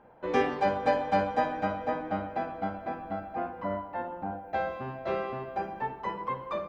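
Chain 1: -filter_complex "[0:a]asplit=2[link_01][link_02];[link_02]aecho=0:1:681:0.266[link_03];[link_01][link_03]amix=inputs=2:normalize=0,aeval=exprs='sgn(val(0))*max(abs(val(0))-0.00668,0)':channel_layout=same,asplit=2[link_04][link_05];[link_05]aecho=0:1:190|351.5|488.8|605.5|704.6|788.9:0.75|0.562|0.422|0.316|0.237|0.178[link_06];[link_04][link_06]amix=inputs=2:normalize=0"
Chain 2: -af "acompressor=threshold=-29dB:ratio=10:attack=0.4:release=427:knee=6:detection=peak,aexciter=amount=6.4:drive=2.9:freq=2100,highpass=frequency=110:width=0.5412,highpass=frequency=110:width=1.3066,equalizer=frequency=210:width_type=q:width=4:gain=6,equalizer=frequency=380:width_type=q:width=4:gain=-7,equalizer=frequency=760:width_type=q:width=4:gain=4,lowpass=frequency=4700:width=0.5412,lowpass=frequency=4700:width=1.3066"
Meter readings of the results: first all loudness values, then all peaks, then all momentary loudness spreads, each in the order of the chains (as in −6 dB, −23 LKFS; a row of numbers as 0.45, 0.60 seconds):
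−29.5, −36.5 LKFS; −10.0, −21.0 dBFS; 9, 3 LU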